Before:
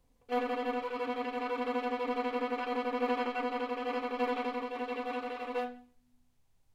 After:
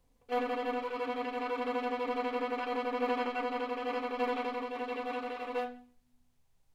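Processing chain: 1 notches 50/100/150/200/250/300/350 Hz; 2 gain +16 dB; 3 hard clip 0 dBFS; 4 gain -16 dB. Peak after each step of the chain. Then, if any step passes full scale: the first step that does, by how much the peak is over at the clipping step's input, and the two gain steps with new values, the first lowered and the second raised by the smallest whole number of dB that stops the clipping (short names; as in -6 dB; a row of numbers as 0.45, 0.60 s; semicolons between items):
-20.0, -4.0, -4.0, -20.0 dBFS; no overload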